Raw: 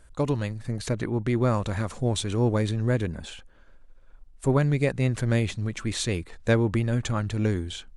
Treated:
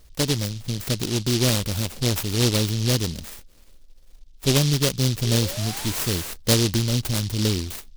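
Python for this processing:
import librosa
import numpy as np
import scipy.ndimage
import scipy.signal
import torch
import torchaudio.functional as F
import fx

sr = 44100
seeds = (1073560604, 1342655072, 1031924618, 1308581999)

y = fx.spec_paint(x, sr, seeds[0], shape='rise', start_s=5.23, length_s=1.11, low_hz=380.0, high_hz=1800.0, level_db=-36.0)
y = fx.noise_mod_delay(y, sr, seeds[1], noise_hz=4200.0, depth_ms=0.28)
y = y * 10.0 ** (2.5 / 20.0)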